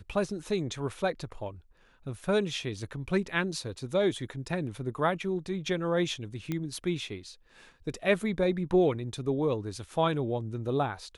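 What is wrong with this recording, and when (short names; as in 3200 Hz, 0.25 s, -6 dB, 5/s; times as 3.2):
6.52 pop -19 dBFS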